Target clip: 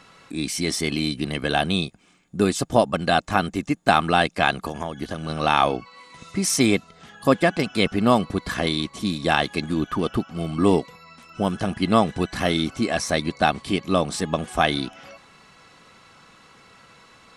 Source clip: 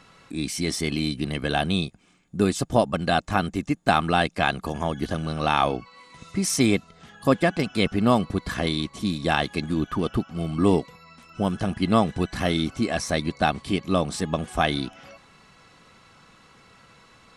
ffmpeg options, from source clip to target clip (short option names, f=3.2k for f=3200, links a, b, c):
-filter_complex "[0:a]lowshelf=f=170:g=-6,asettb=1/sr,asplit=3[a][b][c];[a]atrim=end=4.664[d];[b]atrim=start=4.66:end=5.29,asetpts=PTS-STARTPTS,afade=t=in:d=0.004:c=qsin,afade=t=out:st=0.626:d=0.004:c=qsin,acompressor=threshold=-28dB:ratio=6[e];[c]atrim=start=5.286[f];[d][e]acrossfade=d=0.004:c1=hsin:c2=qsin[g];[g][f]acrossfade=d=0.004:c1=qsin:c2=hsin,volume=3dB"